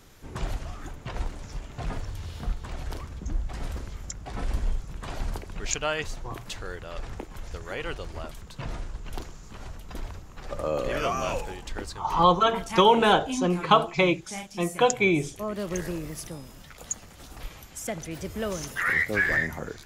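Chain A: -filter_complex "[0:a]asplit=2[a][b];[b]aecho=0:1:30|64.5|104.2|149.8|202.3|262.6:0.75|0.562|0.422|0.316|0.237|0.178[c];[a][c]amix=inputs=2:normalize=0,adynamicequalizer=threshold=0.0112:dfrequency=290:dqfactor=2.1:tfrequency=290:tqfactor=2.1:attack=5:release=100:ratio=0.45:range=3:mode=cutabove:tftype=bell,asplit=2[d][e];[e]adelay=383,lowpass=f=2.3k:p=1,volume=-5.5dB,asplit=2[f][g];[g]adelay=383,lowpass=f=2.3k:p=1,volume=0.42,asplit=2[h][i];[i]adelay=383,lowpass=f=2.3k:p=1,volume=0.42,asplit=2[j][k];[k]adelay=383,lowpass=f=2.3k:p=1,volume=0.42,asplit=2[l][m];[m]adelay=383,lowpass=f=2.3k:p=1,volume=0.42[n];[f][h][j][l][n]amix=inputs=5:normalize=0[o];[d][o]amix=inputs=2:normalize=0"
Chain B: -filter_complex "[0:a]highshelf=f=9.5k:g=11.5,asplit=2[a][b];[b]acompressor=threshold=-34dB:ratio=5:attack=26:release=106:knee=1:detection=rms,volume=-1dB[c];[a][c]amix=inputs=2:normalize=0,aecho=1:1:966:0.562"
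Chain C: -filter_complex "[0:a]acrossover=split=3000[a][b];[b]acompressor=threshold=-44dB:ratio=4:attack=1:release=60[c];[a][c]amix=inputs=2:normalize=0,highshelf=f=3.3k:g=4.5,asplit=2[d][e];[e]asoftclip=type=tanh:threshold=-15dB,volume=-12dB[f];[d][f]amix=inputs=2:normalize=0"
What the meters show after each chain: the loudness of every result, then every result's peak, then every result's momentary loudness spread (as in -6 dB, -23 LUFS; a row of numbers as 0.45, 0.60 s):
-24.0, -25.0, -26.0 LUFS; -3.5, -2.0, -5.0 dBFS; 18, 15, 19 LU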